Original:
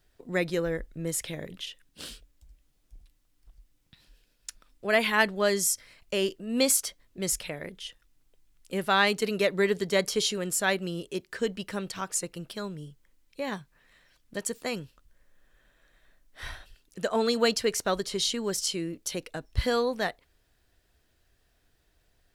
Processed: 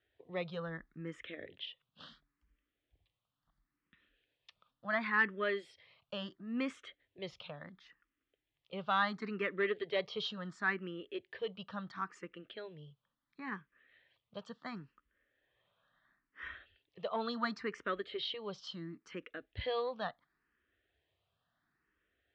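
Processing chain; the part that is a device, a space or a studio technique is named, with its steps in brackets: barber-pole phaser into a guitar amplifier (endless phaser +0.72 Hz; soft clip -17 dBFS, distortion -20 dB; speaker cabinet 95–3600 Hz, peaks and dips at 1200 Hz +8 dB, 1800 Hz +5 dB, 3300 Hz +4 dB); gain -7.5 dB

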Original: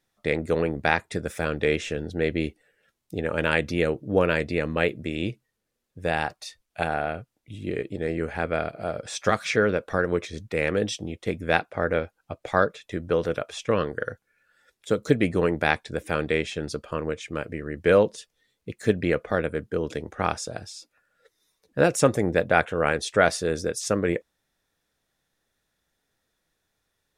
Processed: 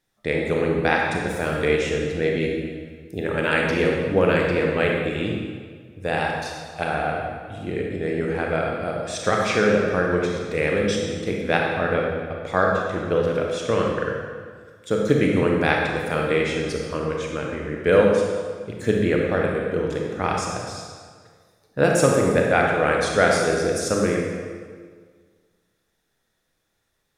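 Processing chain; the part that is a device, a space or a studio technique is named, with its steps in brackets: stairwell (reverb RT60 1.7 s, pre-delay 27 ms, DRR -1 dB)

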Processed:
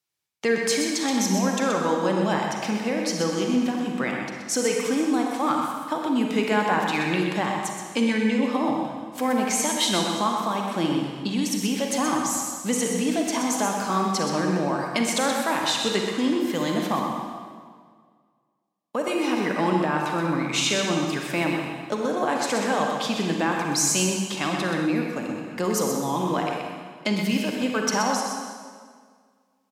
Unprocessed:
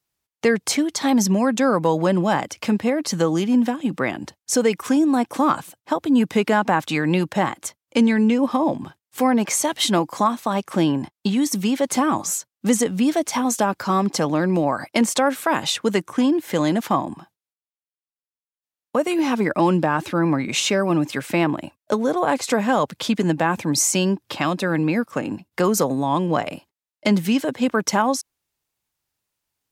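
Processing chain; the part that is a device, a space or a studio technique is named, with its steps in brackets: PA in a hall (HPF 110 Hz; bell 3900 Hz +5 dB 2.7 oct; echo 0.126 s -7 dB; reverb RT60 1.8 s, pre-delay 35 ms, DRR 1.5 dB); 24.85–26.19 dynamic EQ 1900 Hz, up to -4 dB, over -32 dBFS, Q 0.8; gain -7.5 dB

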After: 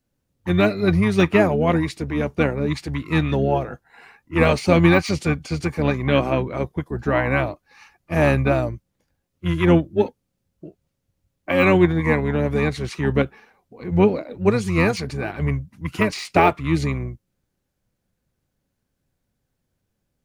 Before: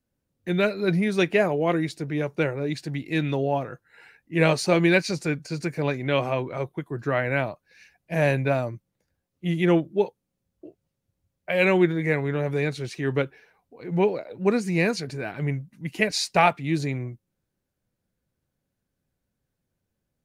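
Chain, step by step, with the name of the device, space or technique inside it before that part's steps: octave pedal (harmoniser -12 st -5 dB); de-esser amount 70%; gain +3.5 dB

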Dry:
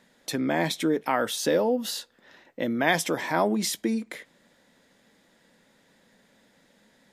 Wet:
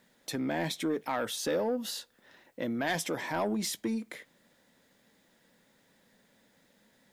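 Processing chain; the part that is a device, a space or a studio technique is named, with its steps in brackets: open-reel tape (soft clip -17.5 dBFS, distortion -15 dB; bell 110 Hz +3 dB; white noise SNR 41 dB); gain -5 dB

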